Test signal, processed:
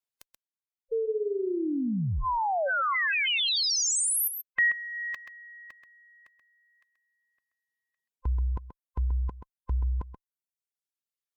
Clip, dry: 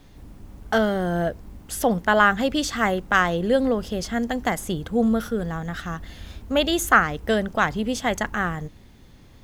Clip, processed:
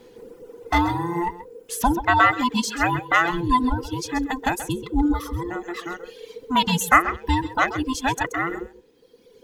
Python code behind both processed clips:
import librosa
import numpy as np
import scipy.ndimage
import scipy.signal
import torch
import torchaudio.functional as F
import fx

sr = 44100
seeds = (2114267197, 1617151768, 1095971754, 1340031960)

p1 = fx.band_invert(x, sr, width_hz=500)
p2 = fx.cheby_harmonics(p1, sr, harmonics=(7,), levels_db=(-42,), full_scale_db=-2.0)
p3 = p2 + fx.echo_single(p2, sr, ms=131, db=-7.0, dry=0)
p4 = fx.dereverb_blind(p3, sr, rt60_s=1.7)
y = p4 * 10.0 ** (1.5 / 20.0)